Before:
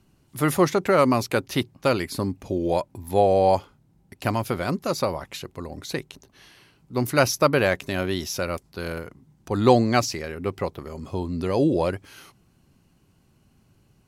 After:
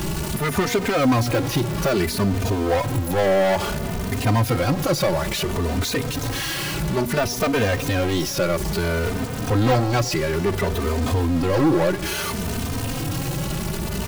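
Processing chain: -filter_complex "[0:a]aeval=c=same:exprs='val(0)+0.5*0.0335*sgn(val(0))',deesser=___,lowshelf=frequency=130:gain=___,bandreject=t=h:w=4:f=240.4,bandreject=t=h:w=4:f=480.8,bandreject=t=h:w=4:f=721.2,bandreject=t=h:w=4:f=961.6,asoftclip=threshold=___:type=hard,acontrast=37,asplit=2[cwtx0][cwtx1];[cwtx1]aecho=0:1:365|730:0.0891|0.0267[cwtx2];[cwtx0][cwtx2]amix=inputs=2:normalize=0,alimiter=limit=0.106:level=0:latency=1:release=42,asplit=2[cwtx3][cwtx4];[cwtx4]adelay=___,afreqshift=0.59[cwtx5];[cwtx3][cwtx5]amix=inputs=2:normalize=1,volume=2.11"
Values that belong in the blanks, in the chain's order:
0.6, 3, 0.0891, 3.1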